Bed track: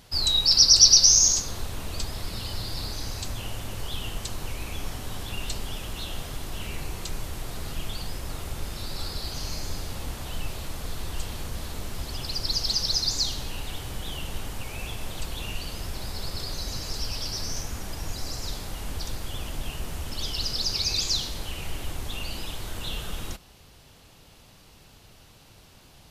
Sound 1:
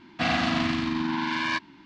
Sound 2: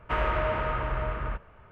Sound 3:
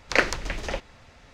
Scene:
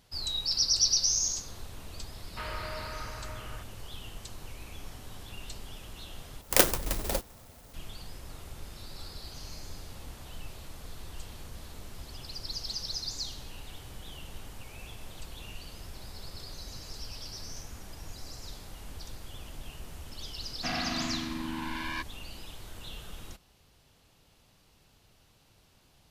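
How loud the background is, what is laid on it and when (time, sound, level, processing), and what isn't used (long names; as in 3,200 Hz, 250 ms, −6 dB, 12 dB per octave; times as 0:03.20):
bed track −10.5 dB
0:02.27: mix in 2 −14 dB + high-shelf EQ 2,100 Hz +12 dB
0:06.41: overwrite with 3 −0.5 dB + converter with an unsteady clock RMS 0.14 ms
0:20.44: mix in 1 −9 dB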